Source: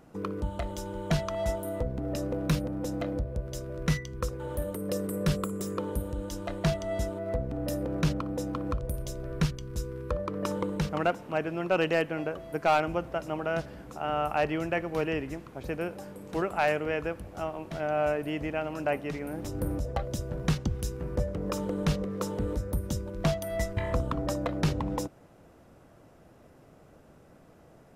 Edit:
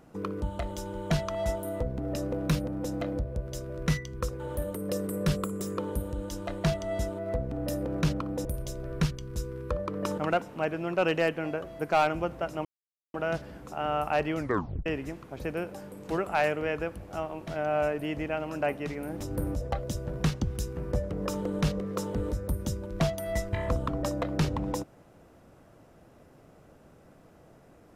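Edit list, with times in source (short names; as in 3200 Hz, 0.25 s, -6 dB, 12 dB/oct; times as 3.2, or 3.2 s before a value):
8.45–8.85 cut
10.58–10.91 cut
13.38 insert silence 0.49 s
14.61 tape stop 0.49 s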